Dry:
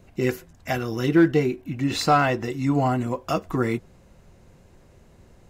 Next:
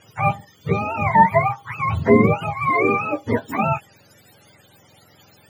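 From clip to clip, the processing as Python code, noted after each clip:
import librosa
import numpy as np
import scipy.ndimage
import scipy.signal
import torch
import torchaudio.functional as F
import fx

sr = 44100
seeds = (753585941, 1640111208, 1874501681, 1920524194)

y = fx.octave_mirror(x, sr, pivot_hz=550.0)
y = F.gain(torch.from_numpy(y), 5.5).numpy()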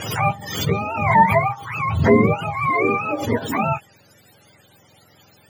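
y = fx.pre_swell(x, sr, db_per_s=62.0)
y = F.gain(torch.from_numpy(y), -1.0).numpy()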